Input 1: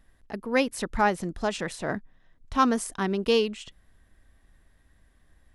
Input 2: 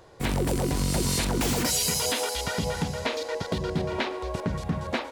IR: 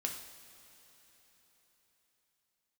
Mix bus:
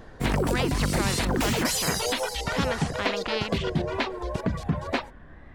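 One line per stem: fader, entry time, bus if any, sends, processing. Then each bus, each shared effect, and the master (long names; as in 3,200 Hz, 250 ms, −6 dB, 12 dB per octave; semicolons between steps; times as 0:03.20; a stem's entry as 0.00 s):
−1.5 dB, 0.00 s, no send, low-pass filter 1,700 Hz 12 dB per octave; every bin compressed towards the loudest bin 4 to 1
+2.5 dB, 0.00 s, no send, reverb reduction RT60 0.73 s; high-shelf EQ 5,100 Hz −5.5 dB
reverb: not used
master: tape wow and flutter 86 cents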